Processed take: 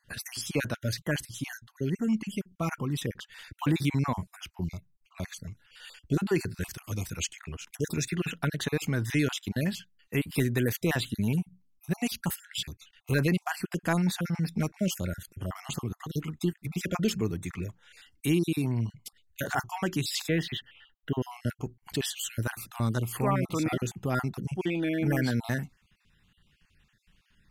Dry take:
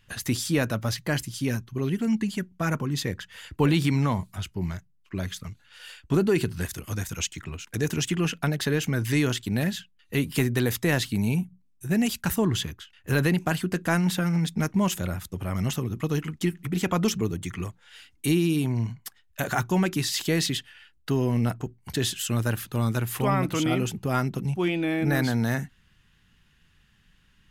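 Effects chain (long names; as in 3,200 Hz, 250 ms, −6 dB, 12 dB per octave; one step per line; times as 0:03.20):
time-frequency cells dropped at random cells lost 35%
0:20.28–0:21.22: flat-topped bell 7,800 Hz −16 dB
level −2.5 dB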